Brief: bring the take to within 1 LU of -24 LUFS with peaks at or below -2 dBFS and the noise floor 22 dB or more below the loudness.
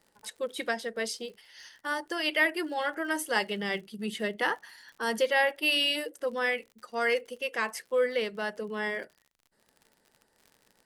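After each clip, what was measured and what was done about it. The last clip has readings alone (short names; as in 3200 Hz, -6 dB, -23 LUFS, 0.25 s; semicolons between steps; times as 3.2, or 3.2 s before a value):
ticks 58/s; loudness -30.0 LUFS; peak -13.0 dBFS; loudness target -24.0 LUFS
-> de-click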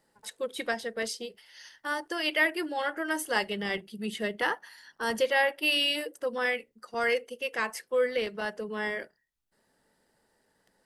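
ticks 0.092/s; loudness -30.0 LUFS; peak -13.0 dBFS; loudness target -24.0 LUFS
-> gain +6 dB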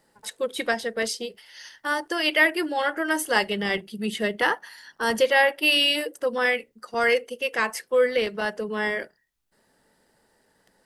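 loudness -24.0 LUFS; peak -7.0 dBFS; noise floor -67 dBFS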